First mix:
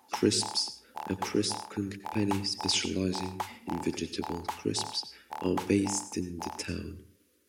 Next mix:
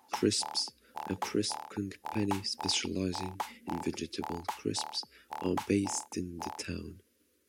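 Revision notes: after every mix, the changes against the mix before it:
reverb: off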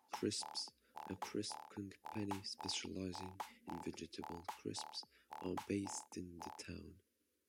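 speech -12.0 dB; background -11.0 dB

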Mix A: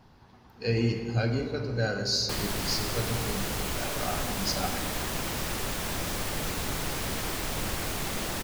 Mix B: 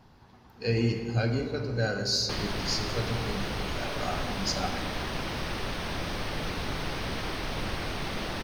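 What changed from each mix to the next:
background: add polynomial smoothing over 15 samples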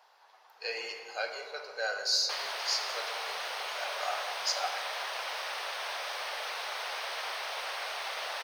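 master: add inverse Chebyshev high-pass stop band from 290 Hz, stop band 40 dB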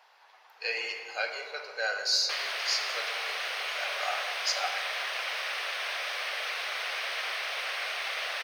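background: add bell 900 Hz -8 dB 0.28 oct; master: add bell 2300 Hz +7 dB 1.2 oct

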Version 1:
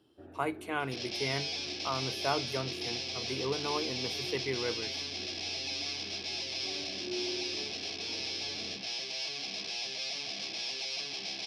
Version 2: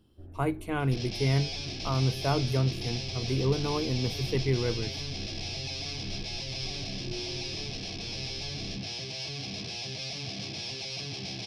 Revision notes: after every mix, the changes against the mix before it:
first sound -9.0 dB; second sound: add bell 130 Hz +7.5 dB 0.41 oct; master: remove weighting filter A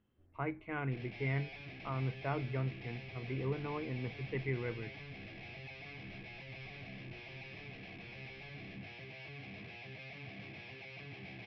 first sound -11.0 dB; master: add ladder low-pass 2400 Hz, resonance 55%

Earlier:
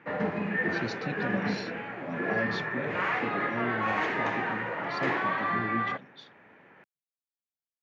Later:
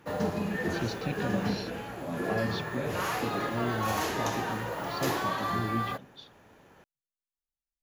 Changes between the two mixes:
background: remove synth low-pass 2100 Hz, resonance Q 3.1; master: remove Chebyshev high-pass 170 Hz, order 2

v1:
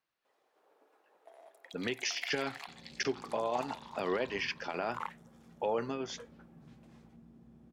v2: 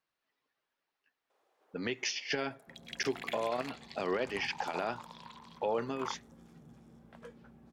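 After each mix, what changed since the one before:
first sound: entry +1.05 s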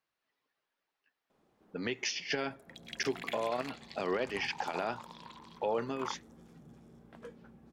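first sound: remove HPF 460 Hz 24 dB/oct

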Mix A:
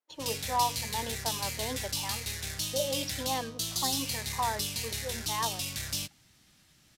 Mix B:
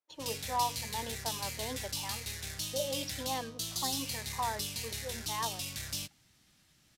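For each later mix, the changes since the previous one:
speech -3.5 dB; background -4.0 dB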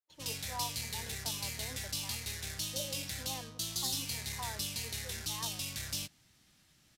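speech -9.5 dB

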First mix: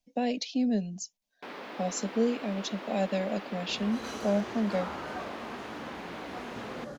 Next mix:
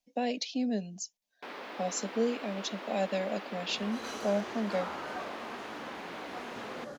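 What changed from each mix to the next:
master: add low shelf 180 Hz -11.5 dB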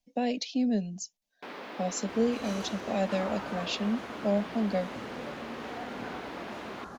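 second sound: entry -1.60 s; master: add low shelf 180 Hz +11.5 dB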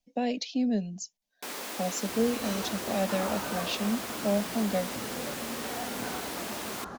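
first sound: remove air absorption 330 m; second sound +3.0 dB

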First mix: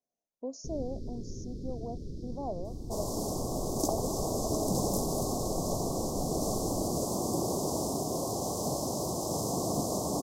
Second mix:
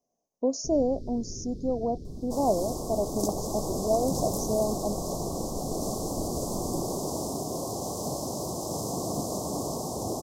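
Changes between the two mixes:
speech +12.0 dB; second sound: entry -0.60 s

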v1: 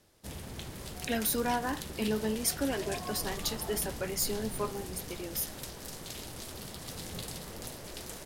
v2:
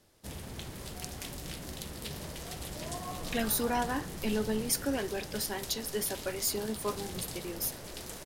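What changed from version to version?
speech: entry +2.25 s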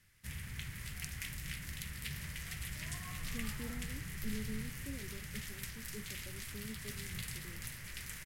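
speech: add steep low-pass 540 Hz; master: add EQ curve 140 Hz 0 dB, 320 Hz -17 dB, 700 Hz -20 dB, 2000 Hz +7 dB, 3800 Hz -6 dB, 14000 Hz -1 dB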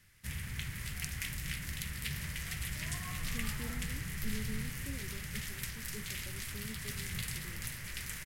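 background +4.0 dB

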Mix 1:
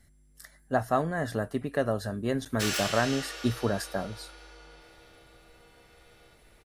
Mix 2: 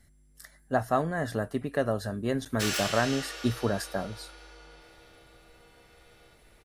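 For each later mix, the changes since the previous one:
none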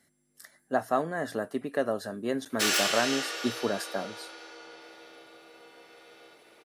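background +6.0 dB; master: add Chebyshev high-pass 270 Hz, order 2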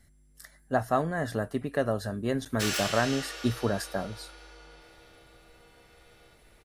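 background -6.0 dB; master: remove Chebyshev high-pass 270 Hz, order 2

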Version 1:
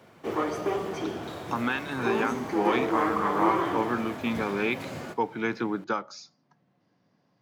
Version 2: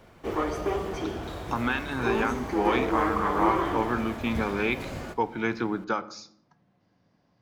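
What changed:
speech: send on; master: remove HPF 110 Hz 24 dB/oct

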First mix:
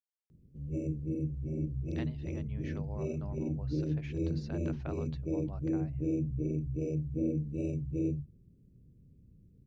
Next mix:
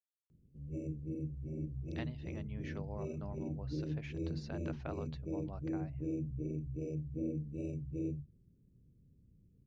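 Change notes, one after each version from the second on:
background -6.0 dB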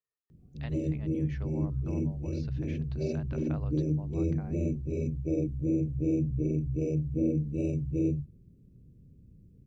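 speech: entry -1.35 s; background +10.0 dB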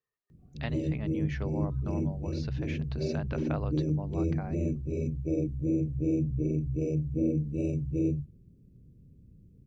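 speech +8.0 dB

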